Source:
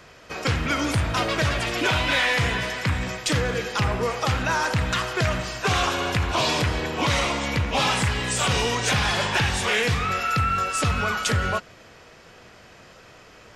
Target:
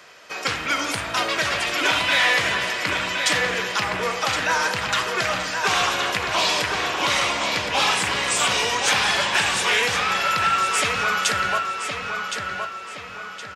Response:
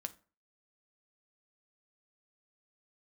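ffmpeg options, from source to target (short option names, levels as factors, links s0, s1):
-filter_complex "[0:a]highpass=f=830:p=1,asplit=2[s0][s1];[s1]adelay=1067,lowpass=f=5000:p=1,volume=0.562,asplit=2[s2][s3];[s3]adelay=1067,lowpass=f=5000:p=1,volume=0.45,asplit=2[s4][s5];[s5]adelay=1067,lowpass=f=5000:p=1,volume=0.45,asplit=2[s6][s7];[s7]adelay=1067,lowpass=f=5000:p=1,volume=0.45,asplit=2[s8][s9];[s9]adelay=1067,lowpass=f=5000:p=1,volume=0.45,asplit=2[s10][s11];[s11]adelay=1067,lowpass=f=5000:p=1,volume=0.45[s12];[s0][s2][s4][s6][s8][s10][s12]amix=inputs=7:normalize=0,asplit=2[s13][s14];[1:a]atrim=start_sample=2205[s15];[s14][s15]afir=irnorm=-1:irlink=0,volume=3.35[s16];[s13][s16]amix=inputs=2:normalize=0,volume=0.447"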